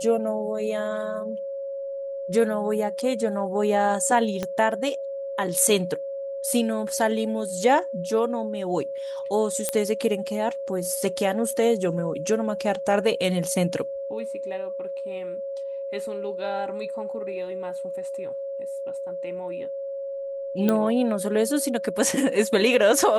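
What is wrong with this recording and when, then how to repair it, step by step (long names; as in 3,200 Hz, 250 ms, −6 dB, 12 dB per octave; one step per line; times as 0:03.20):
whistle 550 Hz −29 dBFS
0:04.43: click −14 dBFS
0:09.69: click −8 dBFS
0:20.69: click −10 dBFS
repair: click removal
notch filter 550 Hz, Q 30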